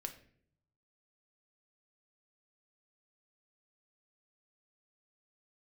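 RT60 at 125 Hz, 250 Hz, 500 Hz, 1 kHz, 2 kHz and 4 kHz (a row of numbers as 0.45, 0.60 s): 1.2, 0.85, 0.70, 0.50, 0.55, 0.40 s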